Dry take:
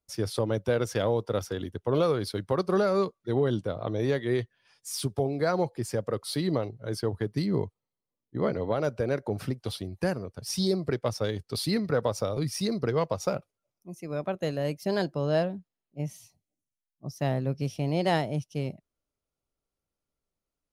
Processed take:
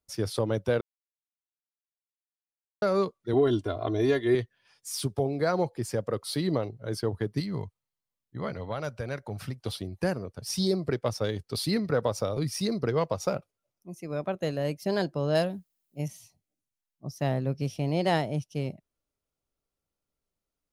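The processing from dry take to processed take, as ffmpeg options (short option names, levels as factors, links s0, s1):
-filter_complex "[0:a]asettb=1/sr,asplit=3[s0][s1][s2];[s0]atrim=end=3.334[s3];[s1]atrim=start=3.33:end=4.35,asetpts=PTS-STARTPTS,afade=t=in:d=0.004:c=qsin,afade=t=out:st=1.016:d=0.004:c=qsin,aecho=1:1:2.9:0.89,atrim=end_sample=44982[s4];[s2]atrim=start=4.346[s5];[s3][s4]acrossfade=d=0.004:c1=hsin:c2=qsin[s6];[s6][s5]acrossfade=d=0.004:c1=qsin:c2=hsin,asettb=1/sr,asplit=3[s7][s8][s9];[s7]atrim=end=7.404[s10];[s8]atrim=start=7.4:end=9.59,asetpts=PTS-STARTPTS,afade=t=in:d=0.004:c=qsin,afade=t=out:st=2.186:d=0.004:c=qsin,equalizer=f=360:w=0.75:g=-10.5[s11];[s9]atrim=start=9.586[s12];[s10][s11]acrossfade=d=0.004:c1=hsin:c2=qsin[s13];[s13][s12]acrossfade=d=0.004:c1=qsin:c2=hsin,asettb=1/sr,asplit=3[s14][s15][s16];[s14]atrim=end=15.354[s17];[s15]atrim=start=15.35:end=16.08,asetpts=PTS-STARTPTS,afade=t=in:d=0.004:c=qsin,afade=t=out:st=0.726:d=0.004:c=qsin,aemphasis=mode=production:type=75kf[s18];[s16]atrim=start=16.076[s19];[s17][s18]acrossfade=d=0.004:c1=hsin:c2=qsin[s20];[s20][s19]acrossfade=d=0.004:c1=qsin:c2=hsin,asplit=3[s21][s22][s23];[s21]atrim=end=0.81,asetpts=PTS-STARTPTS,afade=t=out:st=0.806:d=0.004:c=hsin[s24];[s22]atrim=start=0.81:end=2.82,asetpts=PTS-STARTPTS,volume=0[s25];[s23]atrim=start=2.82,asetpts=PTS-STARTPTS,afade=t=in:d=0.004:c=hsin[s26];[s24][s25][s26]concat=n=3:v=0:a=1"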